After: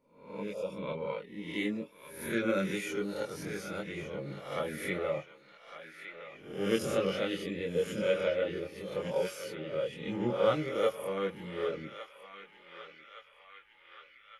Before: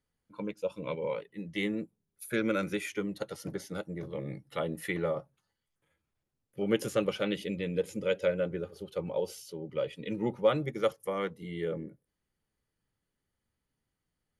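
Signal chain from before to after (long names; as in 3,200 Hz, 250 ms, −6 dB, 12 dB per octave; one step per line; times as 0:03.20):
peak hold with a rise ahead of every peak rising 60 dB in 0.62 s
feedback echo with a band-pass in the loop 1,162 ms, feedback 70%, band-pass 2,200 Hz, level −8 dB
multi-voice chorus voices 4, 0.15 Hz, delay 23 ms, depth 3.6 ms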